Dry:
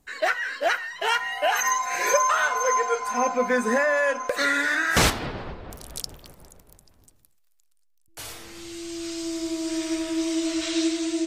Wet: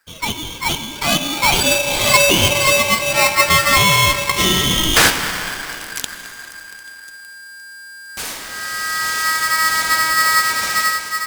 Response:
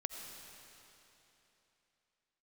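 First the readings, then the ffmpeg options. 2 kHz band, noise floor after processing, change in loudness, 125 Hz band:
+9.0 dB, −37 dBFS, +9.5 dB, +12.5 dB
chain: -filter_complex "[0:a]dynaudnorm=framelen=220:gausssize=9:maxgain=10.5dB,asplit=2[link_01][link_02];[1:a]atrim=start_sample=2205[link_03];[link_02][link_03]afir=irnorm=-1:irlink=0,volume=0dB[link_04];[link_01][link_04]amix=inputs=2:normalize=0,aeval=exprs='val(0)*sgn(sin(2*PI*1600*n/s))':channel_layout=same,volume=-4.5dB"

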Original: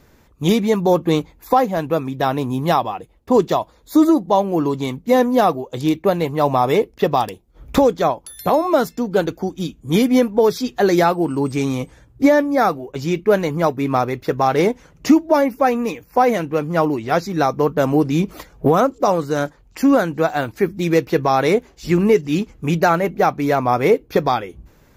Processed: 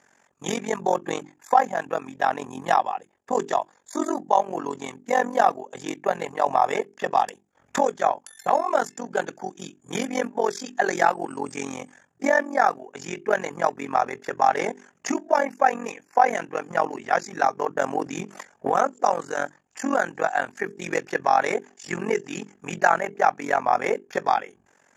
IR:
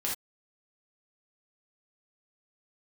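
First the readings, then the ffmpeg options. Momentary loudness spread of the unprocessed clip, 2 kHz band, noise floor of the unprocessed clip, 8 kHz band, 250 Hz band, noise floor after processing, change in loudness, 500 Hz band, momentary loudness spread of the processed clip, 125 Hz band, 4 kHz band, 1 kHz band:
7 LU, −0.5 dB, −52 dBFS, −1.5 dB, −14.5 dB, −64 dBFS, −6.5 dB, −8.5 dB, 12 LU, −18.5 dB, −9.0 dB, −2.0 dB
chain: -af "bandreject=frequency=50:width_type=h:width=6,bandreject=frequency=100:width_type=h:width=6,bandreject=frequency=150:width_type=h:width=6,bandreject=frequency=200:width_type=h:width=6,bandreject=frequency=250:width_type=h:width=6,bandreject=frequency=300:width_type=h:width=6,bandreject=frequency=350:width_type=h:width=6,bandreject=frequency=400:width_type=h:width=6,tremolo=f=45:d=0.947,highpass=300,equalizer=frequency=320:width_type=q:width=4:gain=-7,equalizer=frequency=480:width_type=q:width=4:gain=-4,equalizer=frequency=790:width_type=q:width=4:gain=6,equalizer=frequency=1700:width_type=q:width=4:gain=9,equalizer=frequency=4000:width_type=q:width=4:gain=-9,equalizer=frequency=7000:width_type=q:width=4:gain=10,lowpass=frequency=9800:width=0.5412,lowpass=frequency=9800:width=1.3066,volume=-2dB"

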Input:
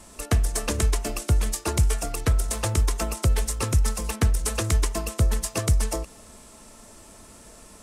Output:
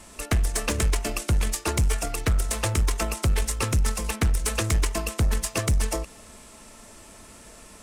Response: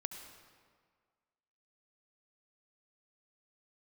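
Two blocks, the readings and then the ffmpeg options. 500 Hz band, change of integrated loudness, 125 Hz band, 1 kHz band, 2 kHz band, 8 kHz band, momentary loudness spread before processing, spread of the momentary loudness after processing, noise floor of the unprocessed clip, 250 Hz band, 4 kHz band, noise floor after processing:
−0.5 dB, −0.5 dB, −1.5 dB, +0.5 dB, +3.0 dB, 0.0 dB, 3 LU, 3 LU, −49 dBFS, 0.0 dB, +1.5 dB, −48 dBFS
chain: -af "aeval=exprs='0.316*(cos(1*acos(clip(val(0)/0.316,-1,1)))-cos(1*PI/2))+0.0794*(cos(2*acos(clip(val(0)/0.316,-1,1)))-cos(2*PI/2))':channel_layout=same,volume=16.5dB,asoftclip=hard,volume=-16.5dB,equalizer=frequency=2300:width=1:gain=4.5"

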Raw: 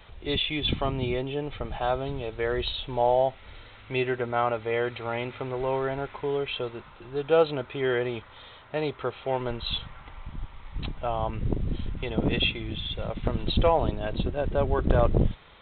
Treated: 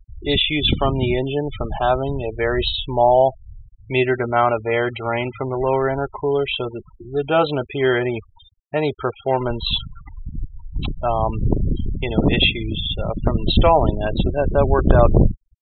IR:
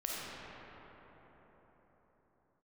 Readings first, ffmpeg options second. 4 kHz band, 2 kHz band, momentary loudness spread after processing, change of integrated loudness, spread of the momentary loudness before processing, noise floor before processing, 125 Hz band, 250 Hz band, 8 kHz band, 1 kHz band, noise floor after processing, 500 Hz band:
+8.5 dB, +8.5 dB, 11 LU, +8.5 dB, 14 LU, −50 dBFS, +9.0 dB, +9.0 dB, can't be measured, +9.0 dB, −52 dBFS, +7.5 dB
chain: -af "bandreject=frequency=490:width=12,afftfilt=real='re*gte(hypot(re,im),0.02)':imag='im*gte(hypot(re,im),0.02)':win_size=1024:overlap=0.75,volume=9dB"

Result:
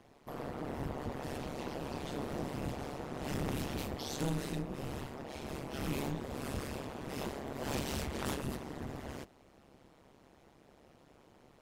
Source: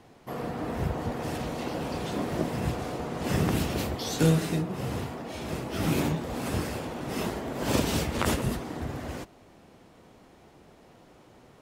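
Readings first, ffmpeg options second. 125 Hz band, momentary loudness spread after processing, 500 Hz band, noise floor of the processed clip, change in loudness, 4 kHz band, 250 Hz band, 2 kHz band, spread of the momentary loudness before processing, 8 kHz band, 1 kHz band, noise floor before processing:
−11.0 dB, 7 LU, −9.0 dB, −63 dBFS, −9.5 dB, −9.0 dB, −10.0 dB, −9.0 dB, 9 LU, −9.0 dB, −8.5 dB, −56 dBFS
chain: -af "asoftclip=type=tanh:threshold=-23dB,tremolo=f=140:d=1,volume=-3dB"

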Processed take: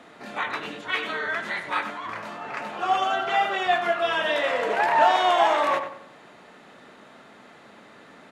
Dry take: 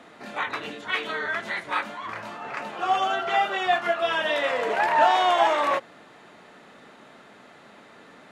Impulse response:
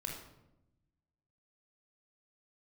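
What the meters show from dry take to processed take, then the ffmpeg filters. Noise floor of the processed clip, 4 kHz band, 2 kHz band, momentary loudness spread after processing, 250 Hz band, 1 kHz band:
−50 dBFS, +0.5 dB, +0.5 dB, 14 LU, +1.0 dB, +0.5 dB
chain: -filter_complex "[0:a]asplit=2[link_01][link_02];[link_02]adelay=95,lowpass=frequency=2600:poles=1,volume=-8dB,asplit=2[link_03][link_04];[link_04]adelay=95,lowpass=frequency=2600:poles=1,volume=0.37,asplit=2[link_05][link_06];[link_06]adelay=95,lowpass=frequency=2600:poles=1,volume=0.37,asplit=2[link_07][link_08];[link_08]adelay=95,lowpass=frequency=2600:poles=1,volume=0.37[link_09];[link_01][link_03][link_05][link_07][link_09]amix=inputs=5:normalize=0"

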